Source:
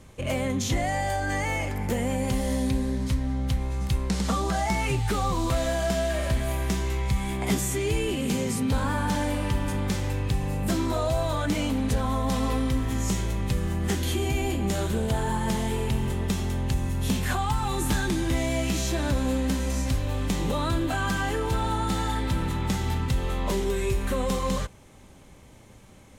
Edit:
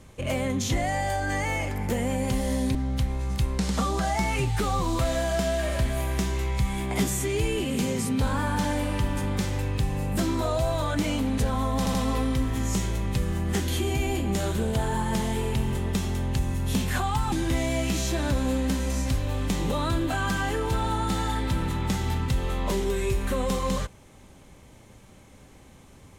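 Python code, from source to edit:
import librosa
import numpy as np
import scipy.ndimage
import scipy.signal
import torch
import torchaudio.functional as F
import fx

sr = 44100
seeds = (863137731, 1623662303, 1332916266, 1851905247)

y = fx.edit(x, sr, fx.cut(start_s=2.75, length_s=0.51),
    fx.stutter(start_s=12.29, slice_s=0.08, count=3),
    fx.cut(start_s=17.67, length_s=0.45), tone=tone)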